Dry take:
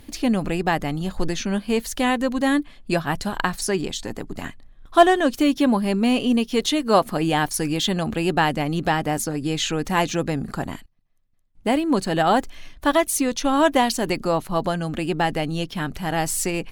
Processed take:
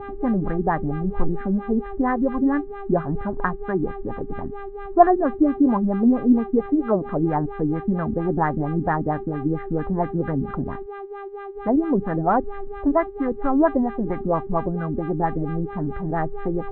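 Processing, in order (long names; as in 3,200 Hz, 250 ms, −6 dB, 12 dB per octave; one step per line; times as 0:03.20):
elliptic low-pass filter 2,000 Hz, stop band 40 dB
low-shelf EQ 160 Hz +11.5 dB
hum with harmonics 400 Hz, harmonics 10, −32 dBFS −6 dB per octave
auto-filter low-pass sine 4.4 Hz 260–1,500 Hz
level −5 dB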